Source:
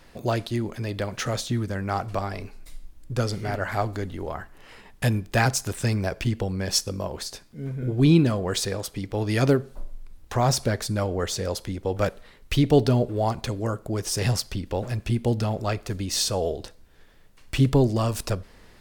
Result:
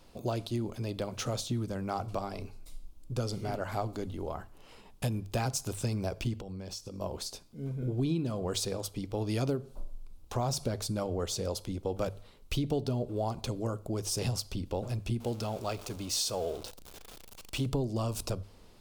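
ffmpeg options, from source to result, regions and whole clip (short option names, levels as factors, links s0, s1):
-filter_complex "[0:a]asettb=1/sr,asplit=3[s0][s1][s2];[s0]atrim=end=6.364[s3];[s1]atrim=start=6.36:end=7.01,asetpts=PTS-STARTPTS,afade=t=in:d=0.004:c=qsin,afade=t=out:st=0.646:d=0.004:c=qsin,equalizer=f=11000:t=o:w=0.52:g=-6,acompressor=threshold=0.0251:ratio=16:attack=3.2:release=140:knee=1:detection=peak[s4];[s2]atrim=start=7.006[s5];[s3][s4]acrossfade=d=0.004:c1=hsin:c2=qsin[s6];[s6][s5]acrossfade=d=0.004:c1=qsin:c2=hsin,asettb=1/sr,asplit=3[s7][s8][s9];[s7]atrim=end=15.204[s10];[s8]atrim=start=15.2:end=17.66,asetpts=PTS-STARTPTS,afade=t=in:d=0.004:c=qsin,afade=t=out:st=2.456:d=0.004:c=qsin,aeval=exprs='val(0)+0.5*0.0188*sgn(val(0))':c=same,lowshelf=f=320:g=-8.5[s11];[s9]atrim=start=17.656[s12];[s10][s11]acrossfade=d=0.004:c1=hsin:c2=qsin[s13];[s13][s12]acrossfade=d=0.004:c1=qsin:c2=hsin,equalizer=f=1800:w=2.5:g=-12.5,bandreject=f=50:t=h:w=6,bandreject=f=100:t=h:w=6,bandreject=f=150:t=h:w=6,acompressor=threshold=0.0708:ratio=6,volume=0.596"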